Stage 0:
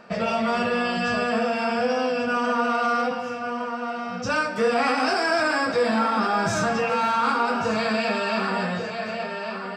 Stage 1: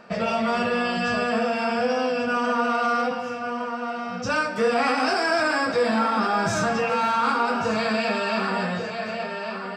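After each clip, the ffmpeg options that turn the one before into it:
-af anull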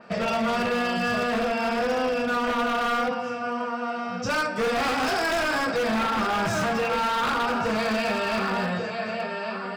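-af "aeval=exprs='0.112*(abs(mod(val(0)/0.112+3,4)-2)-1)':c=same,adynamicequalizer=threshold=0.00562:dfrequency=7000:dqfactor=0.97:tfrequency=7000:tqfactor=0.97:attack=5:release=100:ratio=0.375:range=2:mode=cutabove:tftype=bell"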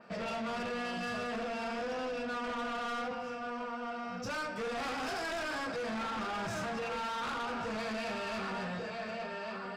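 -af "asoftclip=type=tanh:threshold=0.0501,volume=0.422"

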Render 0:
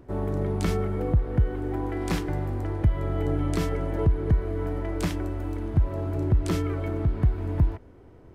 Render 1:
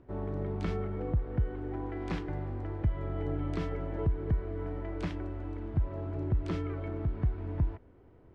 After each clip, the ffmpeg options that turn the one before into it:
-af "lowpass=3500,volume=0.422"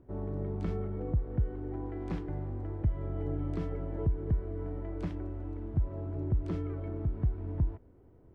-af "equalizer=f=3200:w=0.3:g=-9.5"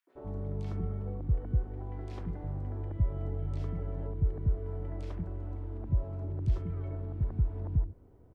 -filter_complex "[0:a]acrossover=split=160|3000[s0][s1][s2];[s1]acompressor=threshold=0.01:ratio=6[s3];[s0][s3][s2]amix=inputs=3:normalize=0,acrossover=split=330|1900[s4][s5][s6];[s5]adelay=70[s7];[s4]adelay=150[s8];[s8][s7][s6]amix=inputs=3:normalize=0,volume=1.19"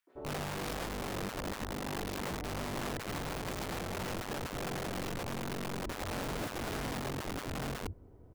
-af "aeval=exprs='0.126*(cos(1*acos(clip(val(0)/0.126,-1,1)))-cos(1*PI/2))+0.0282*(cos(5*acos(clip(val(0)/0.126,-1,1)))-cos(5*PI/2))':c=same,aeval=exprs='(mod(26.6*val(0)+1,2)-1)/26.6':c=same,volume=0.596"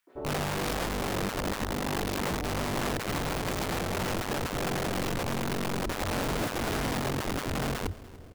-af "aecho=1:1:292|584|876|1168:0.1|0.049|0.024|0.0118,volume=2.24"

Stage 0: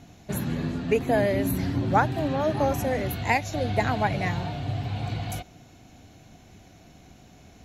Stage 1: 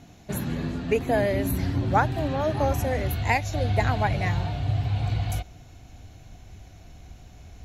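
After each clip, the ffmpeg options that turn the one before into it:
-af "asubboost=boost=5.5:cutoff=86"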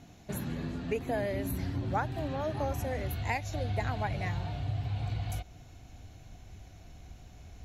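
-af "acompressor=threshold=0.0224:ratio=1.5,volume=0.631"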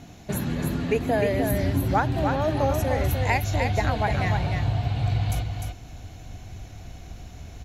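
-af "aecho=1:1:301:0.562,volume=2.66"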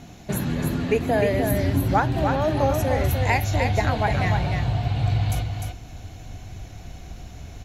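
-af "flanger=delay=5.2:depth=4.4:regen=-82:speed=0.43:shape=sinusoidal,volume=2.11"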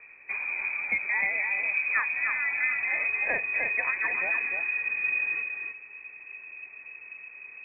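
-af "lowpass=f=2200:t=q:w=0.5098,lowpass=f=2200:t=q:w=0.6013,lowpass=f=2200:t=q:w=0.9,lowpass=f=2200:t=q:w=2.563,afreqshift=-2600,volume=0.447"

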